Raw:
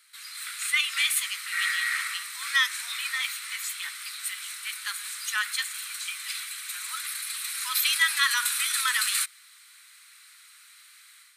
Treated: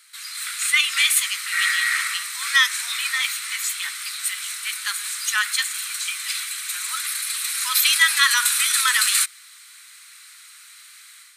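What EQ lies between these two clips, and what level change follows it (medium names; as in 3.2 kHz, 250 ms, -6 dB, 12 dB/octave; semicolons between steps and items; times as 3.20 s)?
peaking EQ 6.8 kHz +3.5 dB 0.84 oct; +6.0 dB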